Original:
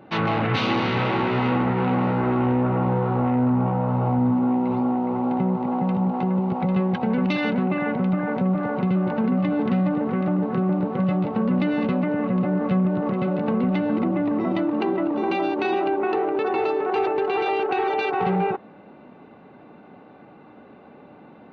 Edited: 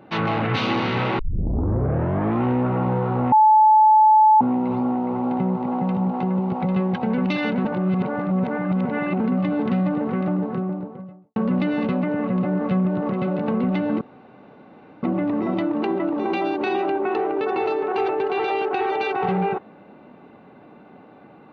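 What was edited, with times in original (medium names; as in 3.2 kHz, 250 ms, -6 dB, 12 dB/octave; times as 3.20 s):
1.19 s: tape start 1.25 s
3.32–4.41 s: bleep 865 Hz -10 dBFS
7.65–9.20 s: reverse
10.17–11.36 s: studio fade out
14.01 s: insert room tone 1.02 s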